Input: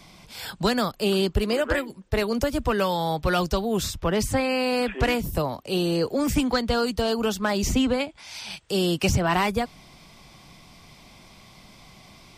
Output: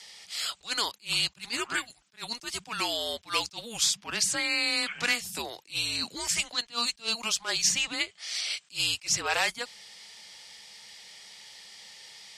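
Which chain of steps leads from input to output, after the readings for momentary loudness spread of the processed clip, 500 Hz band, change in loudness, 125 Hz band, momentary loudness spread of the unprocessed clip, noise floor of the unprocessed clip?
21 LU, −16.5 dB, −4.0 dB, −20.0 dB, 6 LU, −51 dBFS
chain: frequency shifter −230 Hz
meter weighting curve ITU-R 468
level that may rise only so fast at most 300 dB per second
level −4.5 dB

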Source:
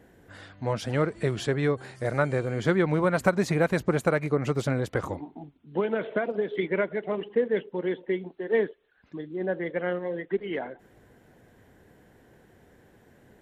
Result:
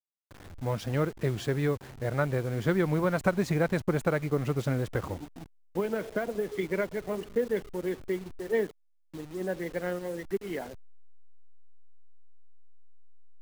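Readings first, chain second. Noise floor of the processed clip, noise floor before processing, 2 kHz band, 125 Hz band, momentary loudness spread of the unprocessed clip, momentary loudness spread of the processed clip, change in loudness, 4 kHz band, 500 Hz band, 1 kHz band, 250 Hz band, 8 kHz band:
−65 dBFS, −60 dBFS, −4.5 dB, −1.0 dB, 10 LU, 10 LU, −3.0 dB, −3.5 dB, −3.5 dB, −4.0 dB, −2.5 dB, −2.0 dB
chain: hold until the input has moved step −39 dBFS
low-shelf EQ 120 Hz +7.5 dB
level −4 dB

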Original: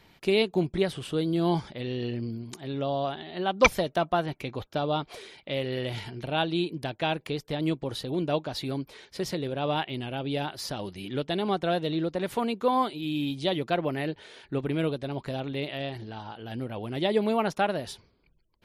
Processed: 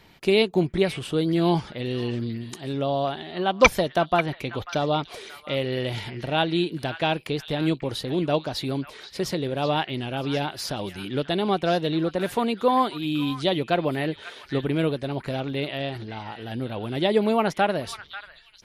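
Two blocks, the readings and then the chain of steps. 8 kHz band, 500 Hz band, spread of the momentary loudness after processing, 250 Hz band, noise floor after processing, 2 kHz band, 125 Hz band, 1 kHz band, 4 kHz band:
+4.0 dB, +4.0 dB, 10 LU, +4.0 dB, −50 dBFS, +4.5 dB, +4.0 dB, +4.0 dB, +4.5 dB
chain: echo through a band-pass that steps 541 ms, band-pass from 1,700 Hz, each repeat 1.4 octaves, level −8 dB
level +4 dB

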